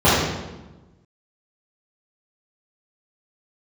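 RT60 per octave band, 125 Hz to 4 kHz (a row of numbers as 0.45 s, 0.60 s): 1.5 s, 1.4 s, 1.2 s, 1.1 s, 0.90 s, 0.80 s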